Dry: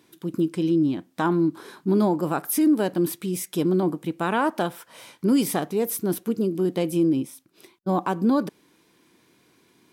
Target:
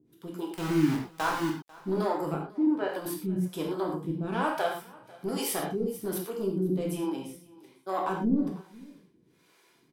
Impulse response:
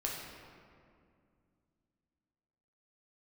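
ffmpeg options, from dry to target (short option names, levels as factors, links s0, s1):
-filter_complex "[0:a]asoftclip=type=tanh:threshold=0.178,acrossover=split=410[s0][s1];[s0]aeval=exprs='val(0)*(1-1/2+1/2*cos(2*PI*1.2*n/s))':c=same[s2];[s1]aeval=exprs='val(0)*(1-1/2-1/2*cos(2*PI*1.2*n/s))':c=same[s3];[s2][s3]amix=inputs=2:normalize=0,asettb=1/sr,asplit=3[s4][s5][s6];[s4]atrim=end=0.514[s7];[s5]atrim=start=0.51:end=1.78,asetpts=PTS-STARTPTS,afade=t=in:d=0.004:c=qsin,afade=t=out:st=1.266:d=0.004:c=qsin,aeval=exprs='val(0)*gte(abs(val(0)),0.0316)':c=same[s8];[s6]atrim=start=1.776[s9];[s7][s8]acrossfade=d=0.004:c1=hsin:c2=qsin[s10];[s10][s9]acrossfade=d=0.004:c1=qsin:c2=hsin,asettb=1/sr,asplit=3[s11][s12][s13];[s11]atrim=end=2.344[s14];[s12]atrim=start=2.34:end=2.89,asetpts=PTS-STARTPTS,afade=t=in:d=0.004:c=qsin,afade=t=out:st=0.546:d=0.004:c=qsin,highpass=280,lowpass=2600[s15];[s13]atrim=start=2.886[s16];[s14][s15]acrossfade=d=0.004:c1=hsin:c2=qsin[s17];[s17][s16]acrossfade=d=0.004:c1=qsin:c2=hsin,aecho=1:1:495:0.075[s18];[1:a]atrim=start_sample=2205,atrim=end_sample=6174,asetrate=48510,aresample=44100[s19];[s18][s19]afir=irnorm=-1:irlink=0"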